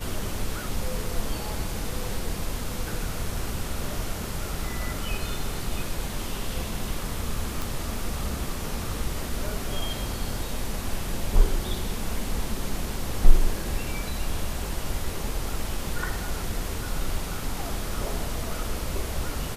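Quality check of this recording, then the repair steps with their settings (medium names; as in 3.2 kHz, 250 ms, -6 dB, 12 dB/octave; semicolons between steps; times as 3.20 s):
7.62 s: pop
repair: de-click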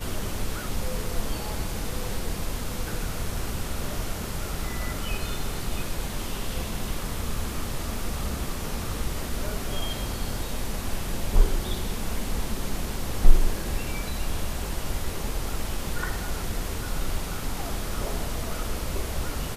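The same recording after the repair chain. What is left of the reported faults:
nothing left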